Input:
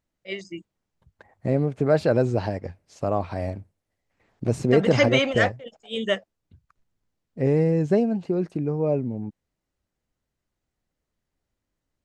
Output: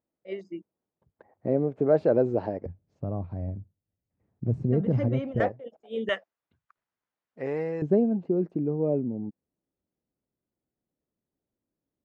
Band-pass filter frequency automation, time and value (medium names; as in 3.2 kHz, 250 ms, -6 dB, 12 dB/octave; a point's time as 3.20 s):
band-pass filter, Q 0.88
420 Hz
from 2.66 s 120 Hz
from 5.40 s 410 Hz
from 6.09 s 1.3 kHz
from 7.82 s 300 Hz